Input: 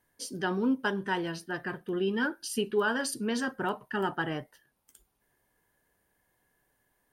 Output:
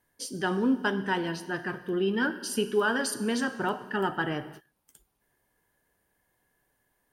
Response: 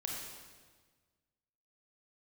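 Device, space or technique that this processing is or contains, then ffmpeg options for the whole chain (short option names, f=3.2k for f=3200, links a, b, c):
keyed gated reverb: -filter_complex "[0:a]asplit=3[a][b][c];[1:a]atrim=start_sample=2205[d];[b][d]afir=irnorm=-1:irlink=0[e];[c]apad=whole_len=314235[f];[e][f]sidechaingate=range=-33dB:threshold=-55dB:ratio=16:detection=peak,volume=-9dB[g];[a][g]amix=inputs=2:normalize=0"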